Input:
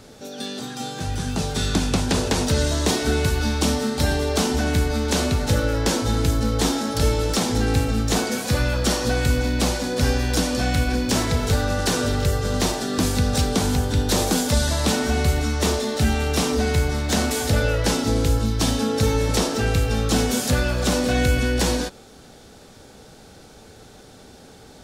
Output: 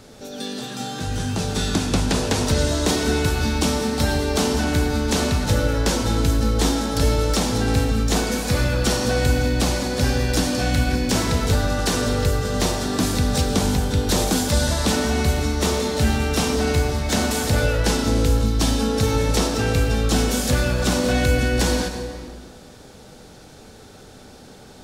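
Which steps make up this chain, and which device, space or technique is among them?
compressed reverb return (on a send at -3.5 dB: reverb RT60 1.6 s, pre-delay 92 ms + compressor, threshold -21 dBFS, peak gain reduction 8.5 dB)

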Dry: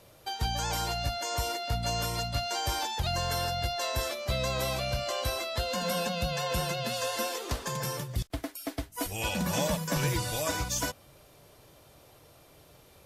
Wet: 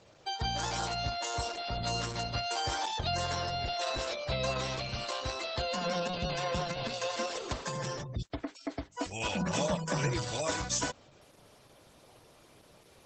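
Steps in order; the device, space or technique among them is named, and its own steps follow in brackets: 4.57–5.44 dynamic EQ 610 Hz, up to -8 dB, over -50 dBFS, Q 4.8; noise-suppressed video call (HPF 110 Hz 6 dB/oct; spectral gate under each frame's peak -25 dB strong; Opus 12 kbps 48000 Hz)

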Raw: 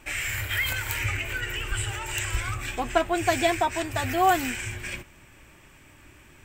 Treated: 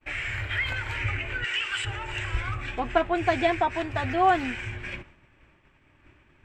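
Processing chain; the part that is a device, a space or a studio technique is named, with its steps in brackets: hearing-loss simulation (LPF 2900 Hz 12 dB/oct; expander -46 dBFS); 1.44–1.85 weighting filter ITU-R 468

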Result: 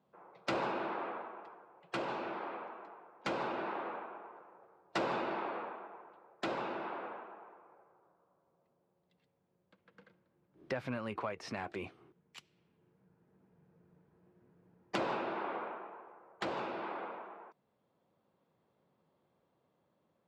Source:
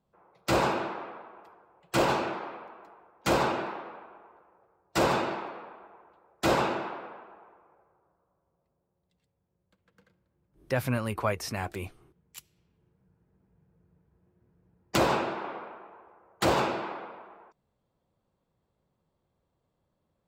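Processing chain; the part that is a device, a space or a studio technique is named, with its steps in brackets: AM radio (BPF 180–3500 Hz; compressor 5:1, threshold -36 dBFS, peak gain reduction 14.5 dB; soft clip -26 dBFS, distortion -24 dB; tremolo 0.21 Hz, depth 35%); gain +4 dB

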